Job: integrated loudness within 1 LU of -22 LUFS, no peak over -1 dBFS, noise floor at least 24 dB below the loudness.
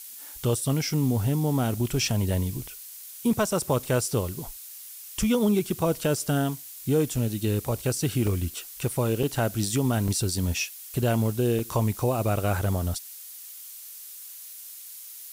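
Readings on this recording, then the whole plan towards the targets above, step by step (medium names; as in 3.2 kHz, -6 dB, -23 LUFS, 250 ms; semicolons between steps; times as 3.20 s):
dropouts 5; longest dropout 3.4 ms; noise floor -43 dBFS; noise floor target -51 dBFS; loudness -26.5 LUFS; peak level -12.0 dBFS; loudness target -22.0 LUFS
-> interpolate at 6.04/8.27/9.23/10.08/11.59 s, 3.4 ms; noise print and reduce 8 dB; trim +4.5 dB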